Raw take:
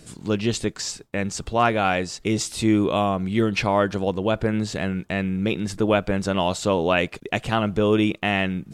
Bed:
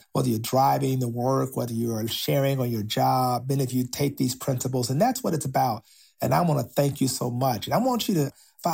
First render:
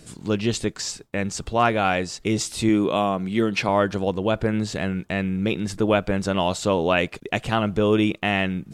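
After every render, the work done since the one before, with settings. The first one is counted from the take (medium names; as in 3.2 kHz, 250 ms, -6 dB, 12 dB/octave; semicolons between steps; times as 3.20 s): 2.69–3.69 s: high-pass 140 Hz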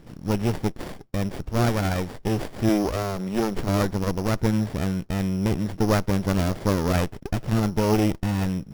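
sorted samples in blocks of 8 samples; sliding maximum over 33 samples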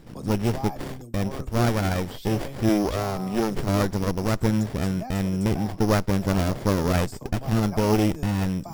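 add bed -15.5 dB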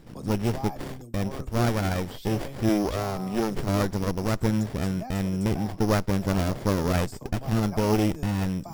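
trim -2 dB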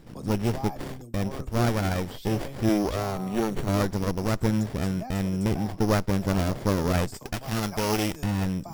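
3.12–3.73 s: Butterworth band-stop 5.1 kHz, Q 7.4; 7.14–8.24 s: tilt shelf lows -5.5 dB, about 880 Hz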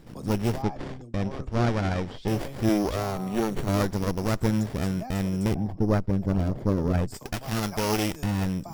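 0.62–2.28 s: distance through air 97 m; 5.54–7.11 s: resonances exaggerated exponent 1.5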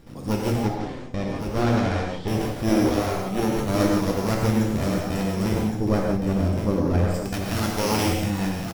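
on a send: delay 1116 ms -7.5 dB; on the sum: gated-style reverb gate 200 ms flat, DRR -1 dB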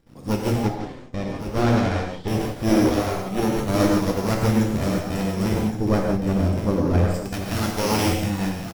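waveshaping leveller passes 1; upward expansion 1.5:1, over -38 dBFS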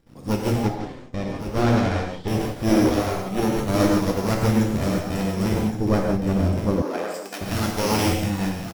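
6.82–7.41 s: Bessel high-pass 430 Hz, order 4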